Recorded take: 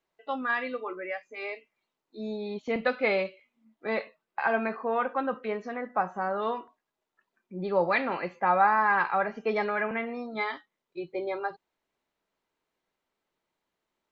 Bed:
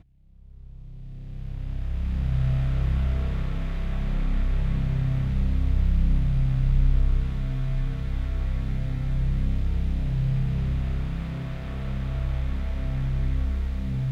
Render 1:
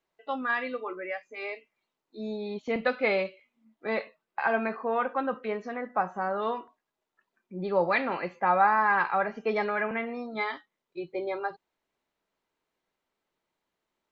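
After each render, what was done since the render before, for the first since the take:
no processing that can be heard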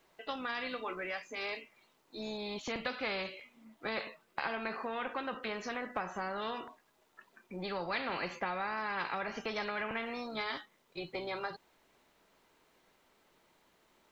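downward compressor 3 to 1, threshold −31 dBFS, peak gain reduction 10.5 dB
every bin compressed towards the loudest bin 2 to 1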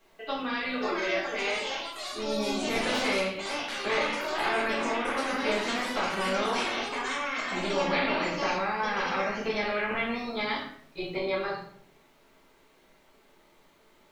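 delay with pitch and tempo change per echo 613 ms, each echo +5 semitones, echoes 3
rectangular room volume 96 cubic metres, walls mixed, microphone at 1.6 metres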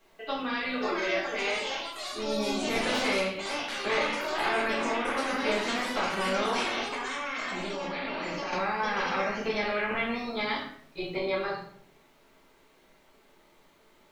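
0:06.95–0:08.53: output level in coarse steps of 17 dB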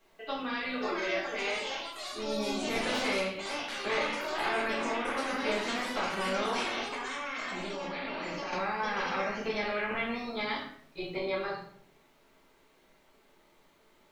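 level −3 dB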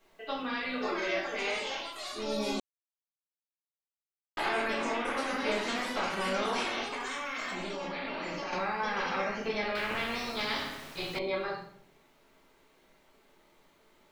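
0:02.60–0:04.37: silence
0:07.00–0:07.55: high-shelf EQ 8,500 Hz +7 dB
0:09.75–0:11.19: every bin compressed towards the loudest bin 2 to 1

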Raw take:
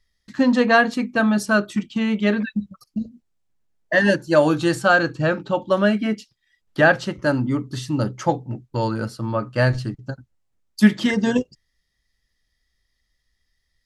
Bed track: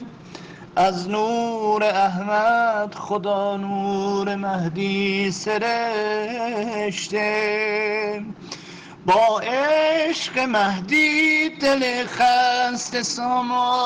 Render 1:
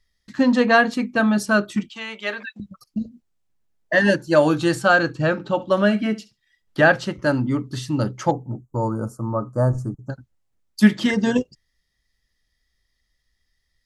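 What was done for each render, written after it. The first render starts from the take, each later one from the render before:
0:01.89–0:02.60: high-pass filter 720 Hz
0:05.33–0:06.80: flutter between parallel walls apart 11.9 metres, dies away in 0.23 s
0:08.31–0:10.10: Chebyshev band-stop filter 1,200–6,700 Hz, order 3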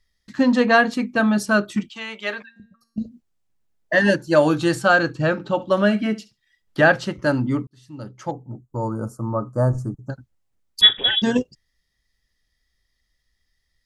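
0:02.42–0:02.98: tuned comb filter 230 Hz, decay 0.66 s, mix 80%
0:07.67–0:09.19: fade in
0:10.81–0:11.22: voice inversion scrambler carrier 3,600 Hz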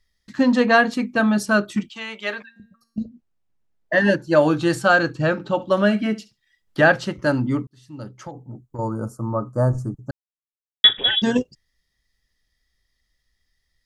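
0:03.03–0:04.69: low-pass filter 2,000 Hz → 4,800 Hz 6 dB per octave
0:08.13–0:08.79: downward compressor, threshold −30 dBFS
0:10.11–0:10.84: silence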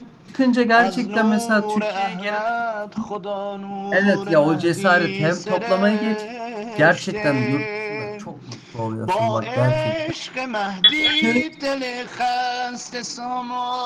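mix in bed track −5 dB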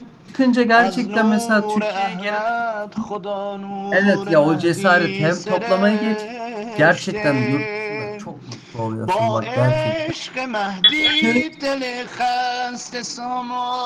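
level +1.5 dB
brickwall limiter −2 dBFS, peak gain reduction 1.5 dB

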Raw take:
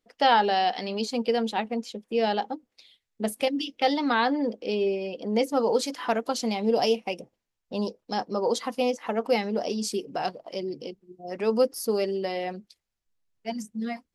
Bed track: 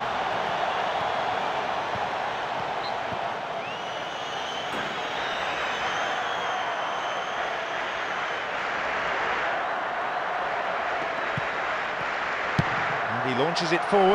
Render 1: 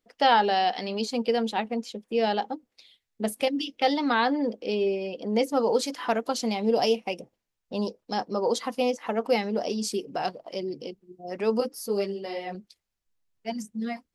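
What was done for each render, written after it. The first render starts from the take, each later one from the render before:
0:11.60–0:12.55: string-ensemble chorus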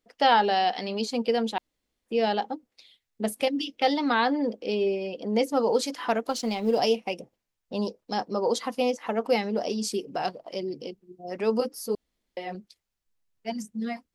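0:01.58–0:02.06: fill with room tone
0:06.27–0:06.79: mu-law and A-law mismatch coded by A
0:11.95–0:12.37: fill with room tone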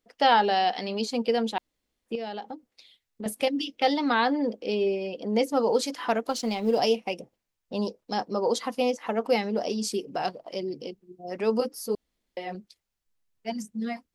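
0:02.15–0:03.26: downward compressor 3 to 1, threshold −34 dBFS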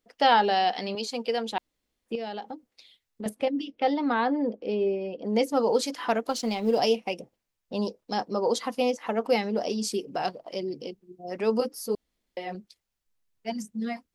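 0:00.95–0:01.52: high-pass filter 480 Hz 6 dB per octave
0:03.29–0:05.25: low-pass filter 1,300 Hz 6 dB per octave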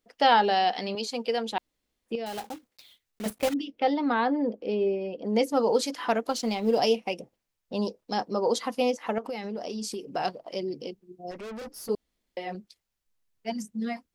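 0:02.26–0:03.56: one scale factor per block 3 bits
0:09.18–0:10.03: downward compressor 10 to 1, threshold −30 dBFS
0:11.31–0:11.89: tube saturation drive 37 dB, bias 0.35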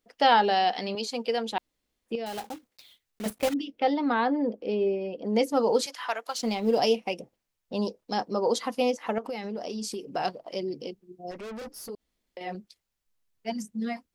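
0:05.86–0:06.39: high-pass filter 870 Hz
0:11.71–0:12.41: downward compressor 3 to 1, threshold −38 dBFS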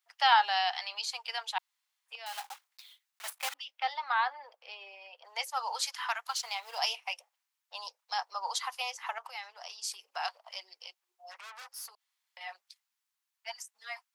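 Butterworth high-pass 850 Hz 36 dB per octave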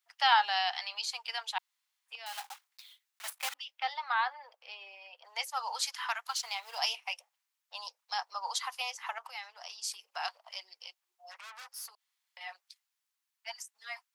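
low-shelf EQ 360 Hz −12 dB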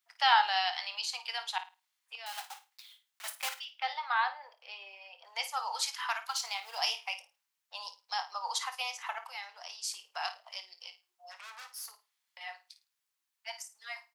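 double-tracking delay 25 ms −13 dB
flutter between parallel walls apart 9.2 metres, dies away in 0.27 s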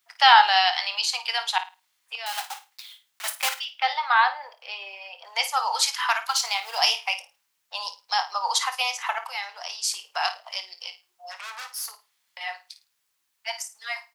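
level +10.5 dB
brickwall limiter −3 dBFS, peak gain reduction 1.5 dB

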